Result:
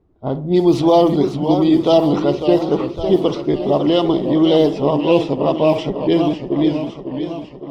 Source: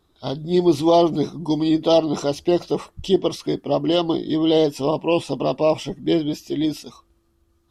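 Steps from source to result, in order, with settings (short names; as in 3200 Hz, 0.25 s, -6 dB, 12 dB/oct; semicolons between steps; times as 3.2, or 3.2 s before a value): added noise violet -46 dBFS; high shelf 6300 Hz -10.5 dB; tape echo 65 ms, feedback 39%, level -13 dB, low-pass 2100 Hz; low-pass opened by the level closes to 560 Hz, open at -12 dBFS; in parallel at -1.5 dB: limiter -14 dBFS, peak gain reduction 8.5 dB; on the sum: warbling echo 0.555 s, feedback 60%, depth 171 cents, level -8.5 dB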